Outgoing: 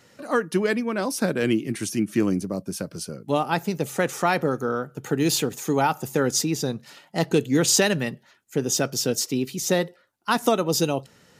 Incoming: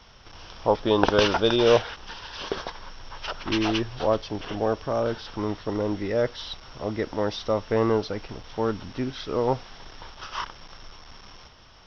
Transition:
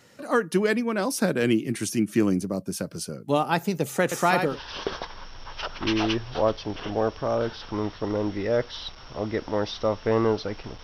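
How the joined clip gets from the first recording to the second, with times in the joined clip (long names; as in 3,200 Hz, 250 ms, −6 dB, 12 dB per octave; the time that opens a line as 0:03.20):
outgoing
0:04.03–0:04.60: single-tap delay 84 ms −6 dB
0:04.51: continue with incoming from 0:02.16, crossfade 0.18 s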